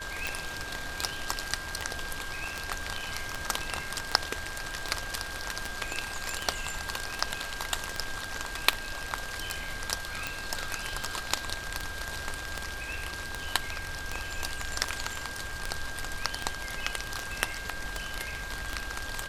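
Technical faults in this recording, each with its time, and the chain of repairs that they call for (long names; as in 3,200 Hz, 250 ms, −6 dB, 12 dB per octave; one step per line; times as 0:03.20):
scratch tick 78 rpm
whistle 1,600 Hz −39 dBFS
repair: click removal
notch filter 1,600 Hz, Q 30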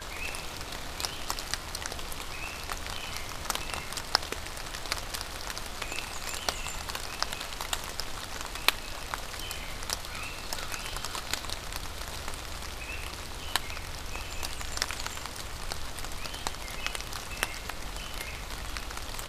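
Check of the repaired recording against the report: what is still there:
none of them is left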